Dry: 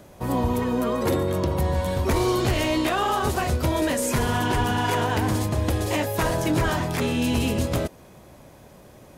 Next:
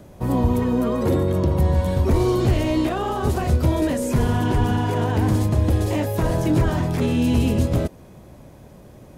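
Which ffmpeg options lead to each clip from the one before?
-filter_complex "[0:a]lowshelf=f=450:g=9,acrossover=split=830[s0][s1];[s1]alimiter=limit=0.0708:level=0:latency=1:release=42[s2];[s0][s2]amix=inputs=2:normalize=0,volume=0.75"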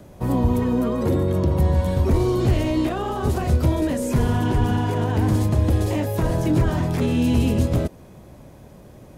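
-filter_complex "[0:a]acrossover=split=370[s0][s1];[s1]acompressor=threshold=0.0562:ratio=6[s2];[s0][s2]amix=inputs=2:normalize=0"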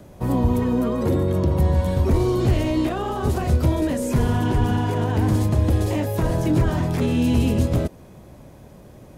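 -af anull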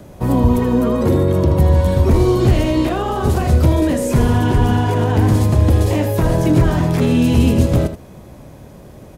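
-af "aecho=1:1:79:0.299,volume=1.88"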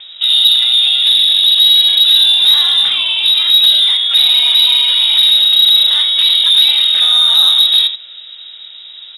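-af "lowpass=f=3300:t=q:w=0.5098,lowpass=f=3300:t=q:w=0.6013,lowpass=f=3300:t=q:w=0.9,lowpass=f=3300:t=q:w=2.563,afreqshift=-3900,acontrast=64,volume=0.891"

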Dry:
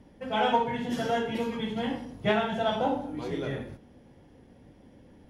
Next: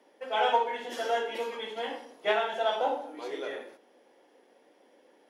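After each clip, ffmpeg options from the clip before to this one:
-af "highpass=f=390:w=0.5412,highpass=f=390:w=1.3066"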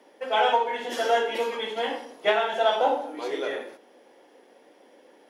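-af "alimiter=limit=0.133:level=0:latency=1:release=351,volume=2.11"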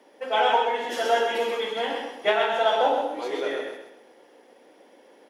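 -af "aecho=1:1:130|260|390|520:0.562|0.18|0.0576|0.0184"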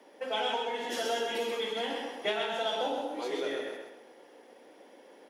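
-filter_complex "[0:a]acrossover=split=330|3000[s0][s1][s2];[s1]acompressor=threshold=0.0178:ratio=3[s3];[s0][s3][s2]amix=inputs=3:normalize=0,volume=0.891"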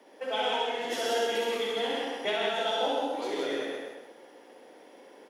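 -af "aecho=1:1:64.14|169.1:0.708|0.631"

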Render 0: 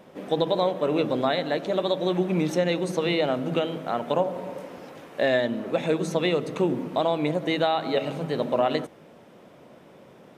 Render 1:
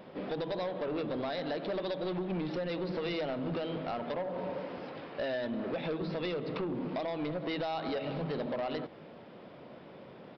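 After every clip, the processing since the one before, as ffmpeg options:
-af "acompressor=threshold=0.0447:ratio=6,aresample=11025,asoftclip=type=tanh:threshold=0.0335,aresample=44100"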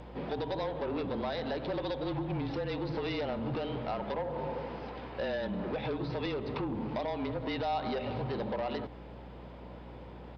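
-af "afreqshift=-32,aeval=exprs='val(0)+0.00398*(sin(2*PI*60*n/s)+sin(2*PI*2*60*n/s)/2+sin(2*PI*3*60*n/s)/3+sin(2*PI*4*60*n/s)/4+sin(2*PI*5*60*n/s)/5)':c=same,superequalizer=9b=1.78:15b=3.55"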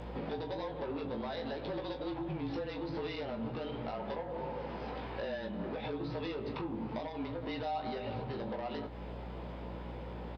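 -filter_complex "[0:a]bandreject=f=50:t=h:w=6,bandreject=f=100:t=h:w=6,bandreject=f=150:t=h:w=6,acompressor=threshold=0.00891:ratio=4,asplit=2[s0][s1];[s1]aecho=0:1:18|39:0.562|0.282[s2];[s0][s2]amix=inputs=2:normalize=0,volume=1.33"

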